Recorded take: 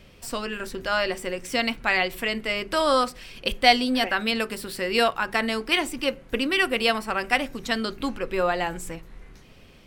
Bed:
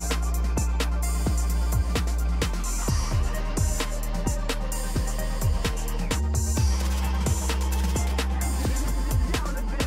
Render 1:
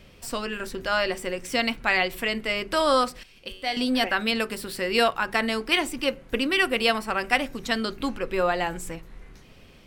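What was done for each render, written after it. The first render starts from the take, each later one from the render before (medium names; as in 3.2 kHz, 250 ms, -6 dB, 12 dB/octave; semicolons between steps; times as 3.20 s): 3.23–3.77 s: feedback comb 94 Hz, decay 0.94 s, mix 80%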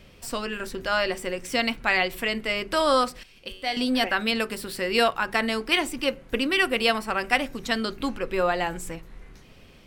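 no audible change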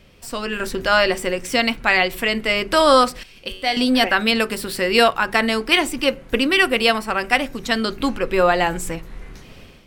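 level rider gain up to 9.5 dB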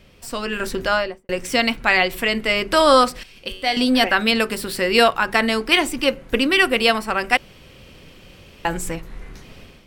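0.79–1.29 s: studio fade out; 7.37–8.65 s: room tone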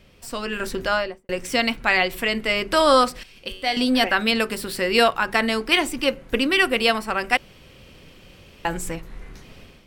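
trim -2.5 dB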